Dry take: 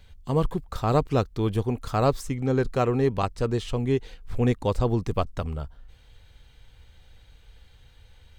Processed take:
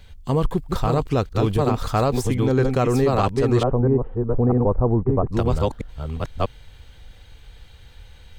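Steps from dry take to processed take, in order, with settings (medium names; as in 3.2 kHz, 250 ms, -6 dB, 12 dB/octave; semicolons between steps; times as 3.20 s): chunks repeated in reverse 646 ms, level -3.5 dB; 3.63–5.31 s: low-pass 1.1 kHz 24 dB/octave; peak limiter -16 dBFS, peak gain reduction 8.5 dB; trim +6 dB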